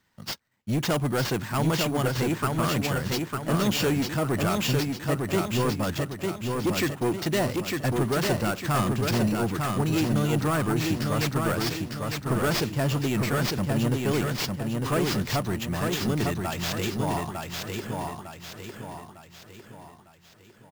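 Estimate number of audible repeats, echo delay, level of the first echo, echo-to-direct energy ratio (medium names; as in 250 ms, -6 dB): 5, 903 ms, -3.5 dB, -2.5 dB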